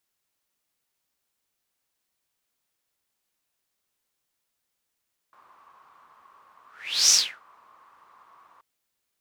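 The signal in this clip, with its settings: whoosh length 3.28 s, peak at 1.79 s, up 0.48 s, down 0.32 s, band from 1.1 kHz, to 5.9 kHz, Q 7.9, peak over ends 39.5 dB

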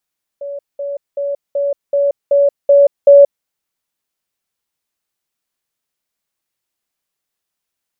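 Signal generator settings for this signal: level ladder 566 Hz -22.5 dBFS, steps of 3 dB, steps 8, 0.18 s 0.20 s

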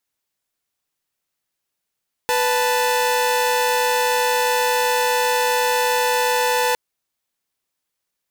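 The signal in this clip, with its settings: chord B4/A5 saw, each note -17 dBFS 4.46 s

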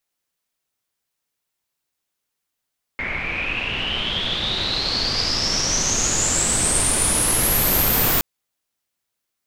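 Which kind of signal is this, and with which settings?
swept filtered noise pink, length 5.22 s lowpass, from 2.1 kHz, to 15 kHz, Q 12, exponential, gain ramp +10 dB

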